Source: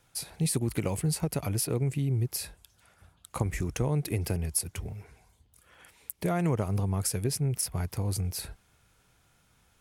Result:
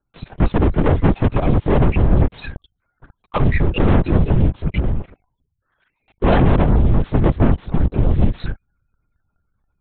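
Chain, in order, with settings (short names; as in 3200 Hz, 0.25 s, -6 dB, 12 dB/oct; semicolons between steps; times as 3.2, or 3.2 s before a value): loudest bins only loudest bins 16; in parallel at -7.5 dB: backlash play -28.5 dBFS; on the sum: sample leveller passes 5; LPC vocoder at 8 kHz whisper; gain +3.5 dB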